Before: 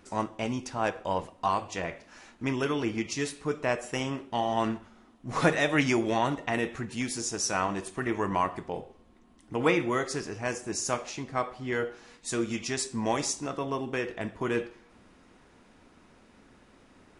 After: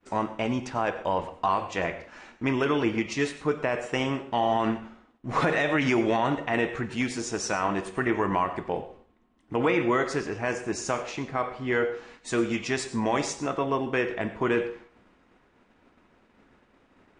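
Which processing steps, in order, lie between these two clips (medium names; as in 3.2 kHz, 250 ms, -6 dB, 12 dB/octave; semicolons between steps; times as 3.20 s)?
expander -50 dBFS; Chebyshev low-pass 9.4 kHz, order 6; tone controls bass -3 dB, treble -11 dB; peak limiter -21 dBFS, peak gain reduction 8.5 dB; reverberation RT60 0.30 s, pre-delay 83 ms, DRR 14 dB; trim +6.5 dB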